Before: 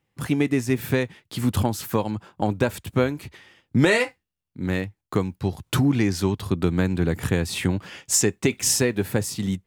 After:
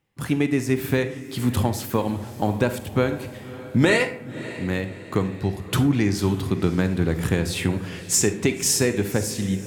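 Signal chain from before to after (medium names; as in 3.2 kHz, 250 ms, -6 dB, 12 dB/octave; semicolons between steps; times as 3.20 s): echo that smears into a reverb 575 ms, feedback 49%, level -15 dB; on a send at -10 dB: reverberation RT60 0.60 s, pre-delay 38 ms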